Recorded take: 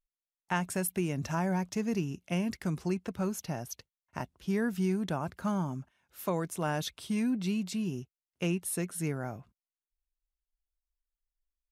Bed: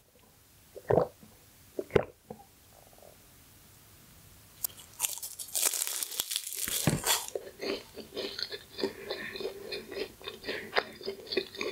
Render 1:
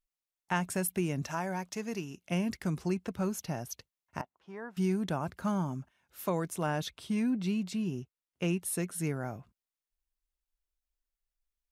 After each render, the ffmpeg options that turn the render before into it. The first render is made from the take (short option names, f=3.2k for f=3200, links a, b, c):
-filter_complex "[0:a]asettb=1/sr,asplit=3[a][b][c];[a]atrim=end=1.234[d];[b]atrim=start=1.23:end=2.26,asetpts=PTS-STARTPTS,afade=t=in:d=0.004:c=qsin,afade=t=out:st=1.026:d=0.004:c=qsin,lowshelf=f=270:g=-11.5[e];[c]atrim=start=2.256[f];[d][e]acrossfade=d=0.004:c1=hsin:c2=qsin[g];[g][f]acrossfade=d=0.004:c1=qsin:c2=hsin,asettb=1/sr,asplit=3[h][i][j];[h]atrim=end=4.214[k];[i]atrim=start=4.21:end=4.77,asetpts=PTS-STARTPTS,afade=t=in:d=0.004:c=qsin,afade=t=out:st=0.556:d=0.004:c=qsin,bandpass=f=920:t=q:w=1.9[l];[j]atrim=start=4.766[m];[k][l]acrossfade=d=0.004:c1=hsin:c2=qsin[n];[n][m]acrossfade=d=0.004:c1=qsin:c2=hsin,asettb=1/sr,asplit=3[o][p][q];[o]atrim=end=6.664[r];[p]atrim=start=6.66:end=8.48,asetpts=PTS-STARTPTS,afade=t=in:d=0.004:c=qsin,afade=t=out:st=1.816:d=0.004:c=qsin,highshelf=f=4.8k:g=-6[s];[q]atrim=start=8.476[t];[r][s]acrossfade=d=0.004:c1=hsin:c2=qsin[u];[u][t]acrossfade=d=0.004:c1=qsin:c2=hsin"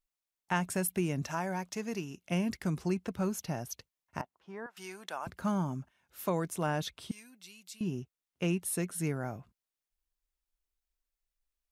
-filter_complex "[0:a]asettb=1/sr,asplit=3[a][b][c];[a]atrim=end=4.664[d];[b]atrim=start=4.66:end=5.27,asetpts=PTS-STARTPTS,afade=t=in:d=0.004:c=qsin,afade=t=out:st=0.606:d=0.004:c=qsin,highpass=790[e];[c]atrim=start=5.266[f];[d][e]acrossfade=d=0.004:c1=hsin:c2=qsin[g];[g][f]acrossfade=d=0.004:c1=qsin:c2=hsin,asettb=1/sr,asplit=3[h][i][j];[h]atrim=end=7.114[k];[i]atrim=start=7.11:end=7.81,asetpts=PTS-STARTPTS,afade=t=in:d=0.004:c=qsin,afade=t=out:st=0.696:d=0.004:c=qsin,aderivative[l];[j]atrim=start=7.806[m];[k][l]acrossfade=d=0.004:c1=hsin:c2=qsin[n];[n][m]acrossfade=d=0.004:c1=qsin:c2=hsin"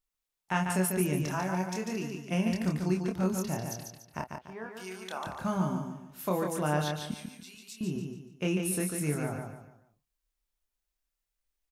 -filter_complex "[0:a]asplit=2[a][b];[b]adelay=27,volume=-4dB[c];[a][c]amix=inputs=2:normalize=0,asplit=2[d][e];[e]aecho=0:1:145|290|435|580:0.562|0.202|0.0729|0.0262[f];[d][f]amix=inputs=2:normalize=0"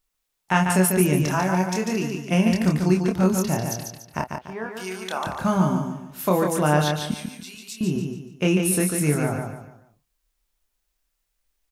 -af "volume=9.5dB"